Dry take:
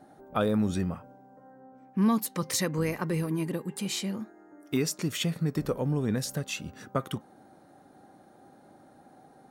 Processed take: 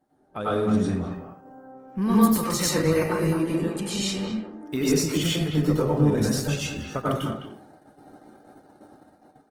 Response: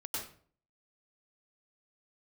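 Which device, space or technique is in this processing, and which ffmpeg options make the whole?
speakerphone in a meeting room: -filter_complex "[0:a]asettb=1/sr,asplit=3[s0][s1][s2];[s0]atrim=end=3.274[s3];[s1]atrim=start=3.27:end=4.67,asetpts=PTS-STARTPTS,afade=t=in:d=0.004:c=qsin,afade=t=out:st=1.396:d=0.004:c=qsin,lowpass=f=9800:w=0.5412,lowpass=f=9800:w=1.3066[s4];[s2]atrim=start=4.666[s5];[s3][s4]acrossfade=d=0.004:c1=hsin:c2=qsin[s6];[s6][s5]acrossfade=d=0.004:c1=qsin:c2=hsin[s7];[1:a]atrim=start_sample=2205[s8];[s7][s8]afir=irnorm=-1:irlink=0,asplit=2[s9][s10];[s10]adelay=210,highpass=300,lowpass=3400,asoftclip=type=hard:threshold=0.0891,volume=0.398[s11];[s9][s11]amix=inputs=2:normalize=0,dynaudnorm=f=370:g=5:m=1.68,agate=range=0.282:threshold=0.00398:ratio=16:detection=peak" -ar 48000 -c:a libopus -b:a 20k

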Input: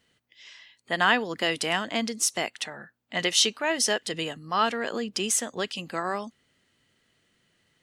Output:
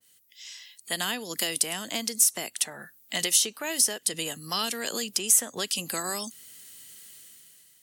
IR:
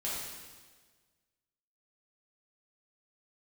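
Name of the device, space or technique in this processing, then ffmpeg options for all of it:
FM broadcast chain: -filter_complex "[0:a]highpass=76,dynaudnorm=f=240:g=7:m=5.01,acrossover=split=440|1200|2500[s0][s1][s2][s3];[s0]acompressor=threshold=0.0355:ratio=4[s4];[s1]acompressor=threshold=0.0251:ratio=4[s5];[s2]acompressor=threshold=0.0141:ratio=4[s6];[s3]acompressor=threshold=0.0224:ratio=4[s7];[s4][s5][s6][s7]amix=inputs=4:normalize=0,aemphasis=mode=production:type=75fm,alimiter=limit=0.316:level=0:latency=1:release=287,asoftclip=type=hard:threshold=0.251,lowpass=f=15000:w=0.5412,lowpass=f=15000:w=1.3066,aemphasis=mode=production:type=75fm,adynamicequalizer=threshold=0.02:dfrequency=1700:dqfactor=0.7:tfrequency=1700:tqfactor=0.7:attack=5:release=100:ratio=0.375:range=2:mode=cutabove:tftype=highshelf,volume=0.473"

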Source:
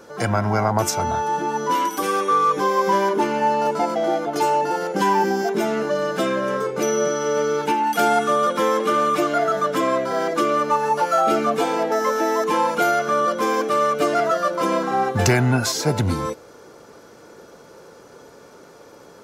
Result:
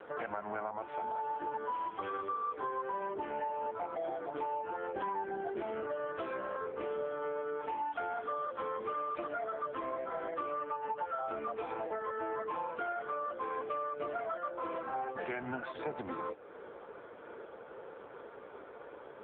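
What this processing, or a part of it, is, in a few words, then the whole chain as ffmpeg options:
voicemail: -filter_complex "[0:a]asplit=3[s0][s1][s2];[s0]afade=t=out:st=5.62:d=0.02[s3];[s1]bandreject=f=85.97:t=h:w=4,bandreject=f=171.94:t=h:w=4,bandreject=f=257.91:t=h:w=4,bandreject=f=343.88:t=h:w=4,bandreject=f=429.85:t=h:w=4,bandreject=f=515.82:t=h:w=4,afade=t=in:st=5.62:d=0.02,afade=t=out:st=6.42:d=0.02[s4];[s2]afade=t=in:st=6.42:d=0.02[s5];[s3][s4][s5]amix=inputs=3:normalize=0,highpass=360,lowpass=2700,acompressor=threshold=0.02:ratio=8" -ar 8000 -c:a libopencore_amrnb -b:a 5900

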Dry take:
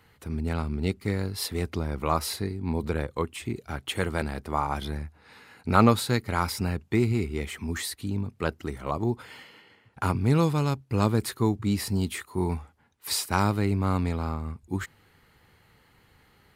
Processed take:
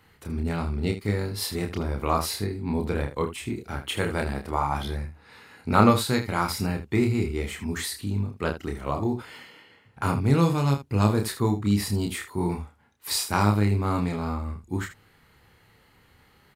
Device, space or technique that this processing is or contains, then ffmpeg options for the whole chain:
slapback doubling: -filter_complex "[0:a]asplit=3[s0][s1][s2];[s1]adelay=29,volume=0.631[s3];[s2]adelay=78,volume=0.266[s4];[s0][s3][s4]amix=inputs=3:normalize=0"

